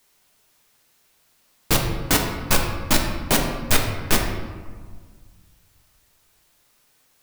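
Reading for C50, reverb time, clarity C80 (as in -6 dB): 4.5 dB, 1.7 s, 6.5 dB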